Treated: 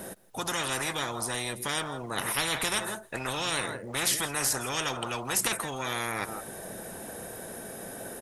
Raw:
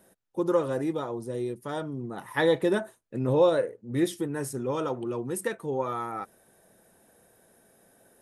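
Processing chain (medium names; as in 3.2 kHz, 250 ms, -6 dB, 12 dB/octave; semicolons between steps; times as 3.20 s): delay 164 ms -22.5 dB; spectrum-flattening compressor 10:1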